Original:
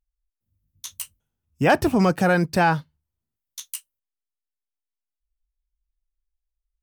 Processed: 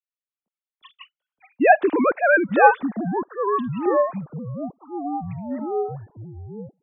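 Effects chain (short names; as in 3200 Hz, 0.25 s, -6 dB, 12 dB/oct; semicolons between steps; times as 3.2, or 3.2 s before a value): sine-wave speech; echoes that change speed 0.234 s, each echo -6 st, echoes 3, each echo -6 dB; gain +2 dB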